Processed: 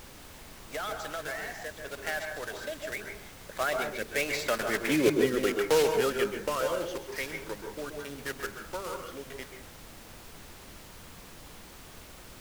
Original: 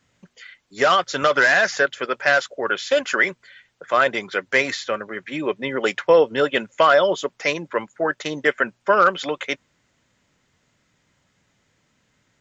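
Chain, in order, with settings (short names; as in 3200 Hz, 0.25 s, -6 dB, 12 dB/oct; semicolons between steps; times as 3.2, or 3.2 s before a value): block floating point 3-bit; Doppler pass-by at 4.92, 29 m/s, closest 9.8 m; in parallel at +2 dB: compressor, threshold -44 dBFS, peak gain reduction 24 dB; on the sum: rotary speaker horn 0.8 Hz; on a send at -4 dB: reverb RT60 0.40 s, pre-delay 0.122 s; on the sum: added noise pink -48 dBFS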